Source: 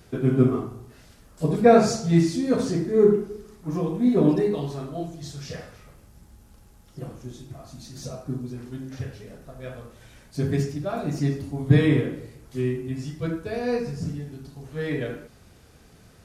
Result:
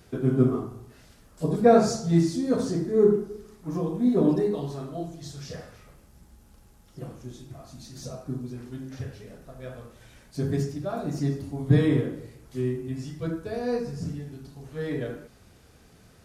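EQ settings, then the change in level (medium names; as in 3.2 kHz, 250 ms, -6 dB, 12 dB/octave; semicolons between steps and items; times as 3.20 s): hum notches 50/100/150 Hz; dynamic bell 2.4 kHz, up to -7 dB, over -51 dBFS, Q 1.6; -2.0 dB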